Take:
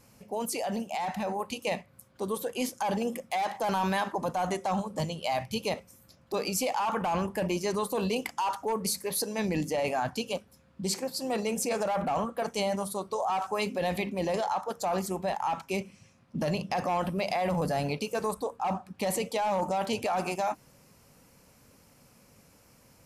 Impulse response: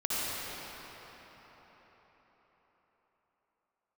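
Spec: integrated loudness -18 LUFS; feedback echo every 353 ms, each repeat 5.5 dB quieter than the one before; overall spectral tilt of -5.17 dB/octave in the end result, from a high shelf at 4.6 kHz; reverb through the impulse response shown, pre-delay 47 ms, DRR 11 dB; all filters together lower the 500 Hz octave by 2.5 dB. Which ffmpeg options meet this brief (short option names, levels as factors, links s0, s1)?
-filter_complex "[0:a]equalizer=f=500:t=o:g=-3,highshelf=f=4600:g=-8.5,aecho=1:1:353|706|1059|1412|1765|2118|2471:0.531|0.281|0.149|0.079|0.0419|0.0222|0.0118,asplit=2[s0][s1];[1:a]atrim=start_sample=2205,adelay=47[s2];[s1][s2]afir=irnorm=-1:irlink=0,volume=0.0944[s3];[s0][s3]amix=inputs=2:normalize=0,volume=4.73"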